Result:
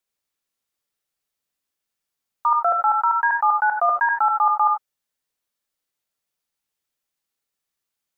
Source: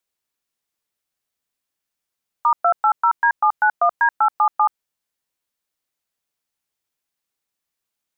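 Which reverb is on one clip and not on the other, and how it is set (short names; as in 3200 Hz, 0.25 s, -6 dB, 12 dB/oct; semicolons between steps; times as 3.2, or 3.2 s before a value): non-linear reverb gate 0.11 s rising, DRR 3.5 dB; gain -2.5 dB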